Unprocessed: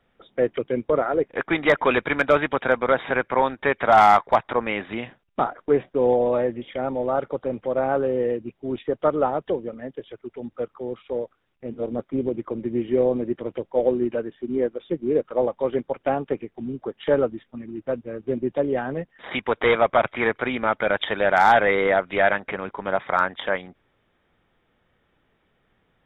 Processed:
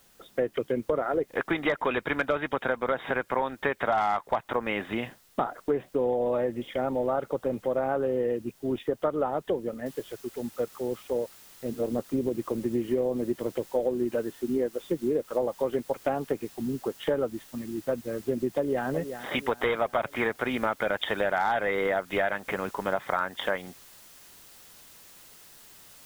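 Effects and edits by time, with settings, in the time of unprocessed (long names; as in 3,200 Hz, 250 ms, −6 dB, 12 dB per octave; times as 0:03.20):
0:09.86: noise floor change −61 dB −52 dB
0:18.48–0:18.88: delay throw 370 ms, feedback 55%, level −13 dB
whole clip: notch filter 2,300 Hz, Q 20; downward compressor, threshold −23 dBFS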